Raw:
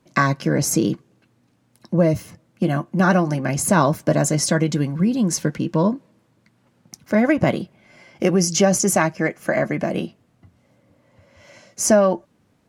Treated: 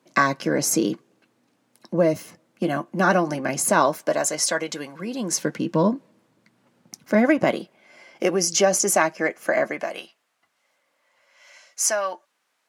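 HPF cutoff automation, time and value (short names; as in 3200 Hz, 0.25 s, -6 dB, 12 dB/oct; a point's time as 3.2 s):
3.55 s 270 Hz
4.26 s 580 Hz
4.93 s 580 Hz
5.76 s 180 Hz
7.18 s 180 Hz
7.61 s 360 Hz
9.63 s 360 Hz
10.03 s 1100 Hz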